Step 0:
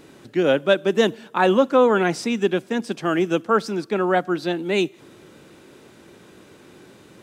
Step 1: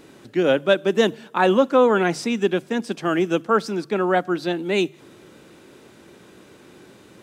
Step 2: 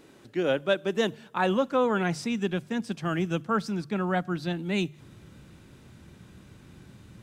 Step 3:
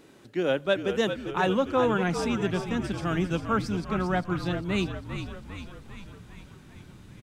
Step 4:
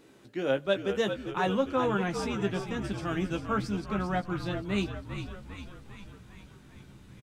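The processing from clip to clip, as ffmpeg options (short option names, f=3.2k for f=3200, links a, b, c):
-af "bandreject=f=50:t=h:w=6,bandreject=f=100:t=h:w=6,bandreject=f=150:t=h:w=6"
-af "asubboost=boost=11.5:cutoff=120,volume=-6.5dB"
-filter_complex "[0:a]asplit=9[a][b][c][d][e][f][g][h][i];[b]adelay=399,afreqshift=-57,volume=-8.5dB[j];[c]adelay=798,afreqshift=-114,volume=-12.8dB[k];[d]adelay=1197,afreqshift=-171,volume=-17.1dB[l];[e]adelay=1596,afreqshift=-228,volume=-21.4dB[m];[f]adelay=1995,afreqshift=-285,volume=-25.7dB[n];[g]adelay=2394,afreqshift=-342,volume=-30dB[o];[h]adelay=2793,afreqshift=-399,volume=-34.3dB[p];[i]adelay=3192,afreqshift=-456,volume=-38.6dB[q];[a][j][k][l][m][n][o][p][q]amix=inputs=9:normalize=0"
-filter_complex "[0:a]asplit=2[a][b];[b]adelay=15,volume=-7dB[c];[a][c]amix=inputs=2:normalize=0,volume=-4dB"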